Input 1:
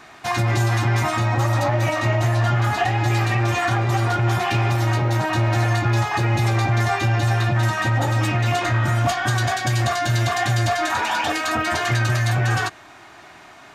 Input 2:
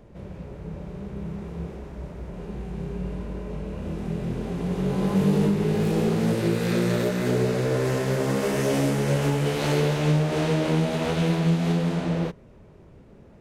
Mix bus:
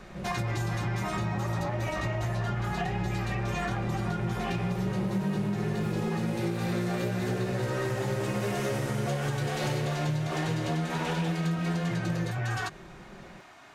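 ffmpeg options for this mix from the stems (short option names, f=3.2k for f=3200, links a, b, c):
-filter_complex "[0:a]volume=-7.5dB[a];[1:a]aecho=1:1:5.5:0.65,volume=-0.5dB[b];[a][b]amix=inputs=2:normalize=0,acompressor=threshold=-27dB:ratio=6"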